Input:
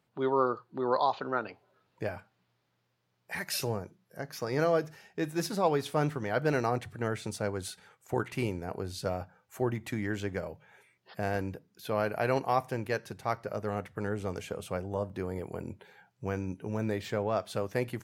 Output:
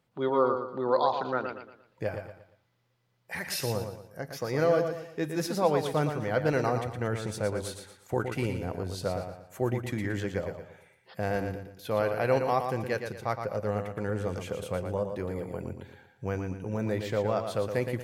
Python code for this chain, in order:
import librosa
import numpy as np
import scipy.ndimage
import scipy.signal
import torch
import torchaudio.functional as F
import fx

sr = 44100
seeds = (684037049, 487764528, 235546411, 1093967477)

p1 = fx.low_shelf(x, sr, hz=75.0, db=7.5)
p2 = fx.small_body(p1, sr, hz=(520.0, 2000.0, 3300.0), ring_ms=85, db=7)
y = p2 + fx.echo_feedback(p2, sr, ms=116, feedback_pct=36, wet_db=-7, dry=0)